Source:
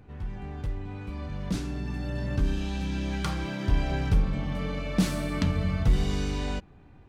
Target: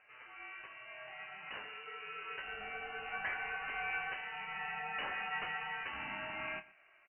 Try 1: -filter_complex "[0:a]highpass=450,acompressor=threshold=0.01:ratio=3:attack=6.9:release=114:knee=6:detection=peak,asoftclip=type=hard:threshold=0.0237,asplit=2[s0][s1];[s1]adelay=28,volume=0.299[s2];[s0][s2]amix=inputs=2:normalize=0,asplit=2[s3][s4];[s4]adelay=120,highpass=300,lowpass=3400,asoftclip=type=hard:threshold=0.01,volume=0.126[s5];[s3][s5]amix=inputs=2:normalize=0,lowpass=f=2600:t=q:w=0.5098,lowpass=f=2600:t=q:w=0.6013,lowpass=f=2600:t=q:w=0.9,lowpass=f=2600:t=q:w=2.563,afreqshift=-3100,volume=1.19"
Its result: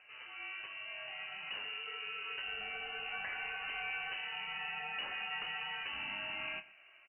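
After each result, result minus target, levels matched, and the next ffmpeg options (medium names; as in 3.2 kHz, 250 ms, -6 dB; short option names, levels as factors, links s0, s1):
compression: peak gain reduction +9 dB; 1 kHz band -4.5 dB
-filter_complex "[0:a]highpass=450,asoftclip=type=hard:threshold=0.0237,asplit=2[s0][s1];[s1]adelay=28,volume=0.299[s2];[s0][s2]amix=inputs=2:normalize=0,asplit=2[s3][s4];[s4]adelay=120,highpass=300,lowpass=3400,asoftclip=type=hard:threshold=0.01,volume=0.126[s5];[s3][s5]amix=inputs=2:normalize=0,lowpass=f=2600:t=q:w=0.5098,lowpass=f=2600:t=q:w=0.6013,lowpass=f=2600:t=q:w=0.9,lowpass=f=2600:t=q:w=2.563,afreqshift=-3100,volume=1.19"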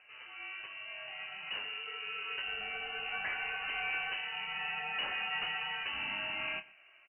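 1 kHz band -4.5 dB
-filter_complex "[0:a]highpass=910,asoftclip=type=hard:threshold=0.0237,asplit=2[s0][s1];[s1]adelay=28,volume=0.299[s2];[s0][s2]amix=inputs=2:normalize=0,asplit=2[s3][s4];[s4]adelay=120,highpass=300,lowpass=3400,asoftclip=type=hard:threshold=0.01,volume=0.126[s5];[s3][s5]amix=inputs=2:normalize=0,lowpass=f=2600:t=q:w=0.5098,lowpass=f=2600:t=q:w=0.6013,lowpass=f=2600:t=q:w=0.9,lowpass=f=2600:t=q:w=2.563,afreqshift=-3100,volume=1.19"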